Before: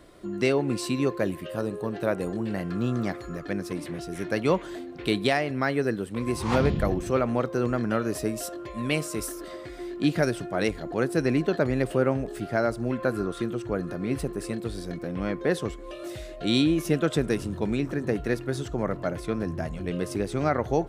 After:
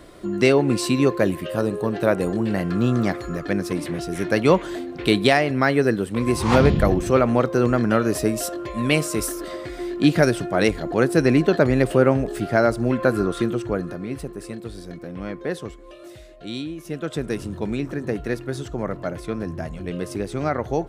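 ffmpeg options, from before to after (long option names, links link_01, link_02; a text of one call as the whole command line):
ffmpeg -i in.wav -af "volume=18dB,afade=type=out:start_time=13.48:duration=0.62:silence=0.354813,afade=type=out:start_time=15.42:duration=1.36:silence=0.398107,afade=type=in:start_time=16.78:duration=0.68:silence=0.281838" out.wav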